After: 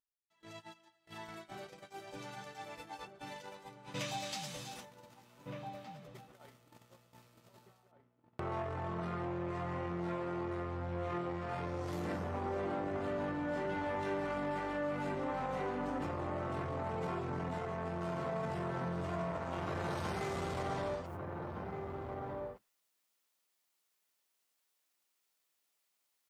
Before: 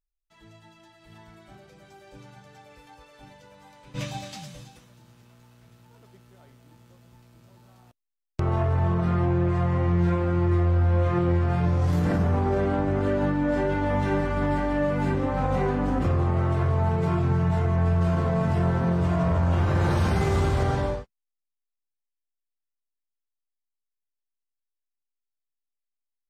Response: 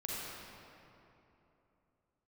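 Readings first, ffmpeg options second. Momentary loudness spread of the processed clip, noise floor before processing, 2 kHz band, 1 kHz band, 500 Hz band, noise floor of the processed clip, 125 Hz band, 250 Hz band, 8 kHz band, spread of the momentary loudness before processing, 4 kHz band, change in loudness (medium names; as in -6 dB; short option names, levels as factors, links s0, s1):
13 LU, -84 dBFS, -9.0 dB, -8.5 dB, -10.5 dB, -81 dBFS, -19.5 dB, -14.0 dB, no reading, 5 LU, -5.0 dB, -15.5 dB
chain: -filter_complex "[0:a]alimiter=limit=0.0944:level=0:latency=1,agate=range=0.0316:threshold=0.00355:ratio=16:detection=peak,asoftclip=type=tanh:threshold=0.0668,areverse,acompressor=mode=upward:threshold=0.00708:ratio=2.5,areverse,highpass=f=410:p=1,bandreject=f=1600:w=23,asplit=2[s0][s1];[s1]adelay=1516,volume=0.447,highshelf=f=4000:g=-34.1[s2];[s0][s2]amix=inputs=2:normalize=0,acompressor=threshold=0.00562:ratio=2,volume=1.68"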